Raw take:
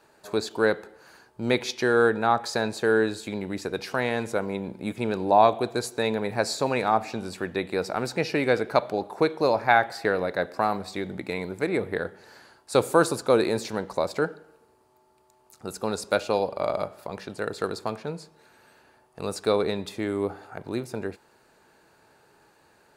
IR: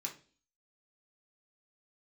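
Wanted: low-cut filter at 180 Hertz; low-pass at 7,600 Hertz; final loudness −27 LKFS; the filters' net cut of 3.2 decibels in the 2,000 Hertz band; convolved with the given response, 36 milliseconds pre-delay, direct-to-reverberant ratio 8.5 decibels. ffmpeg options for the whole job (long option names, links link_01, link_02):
-filter_complex "[0:a]highpass=180,lowpass=7600,equalizer=frequency=2000:width_type=o:gain=-4.5,asplit=2[link_01][link_02];[1:a]atrim=start_sample=2205,adelay=36[link_03];[link_02][link_03]afir=irnorm=-1:irlink=0,volume=-7.5dB[link_04];[link_01][link_04]amix=inputs=2:normalize=0,volume=-0.5dB"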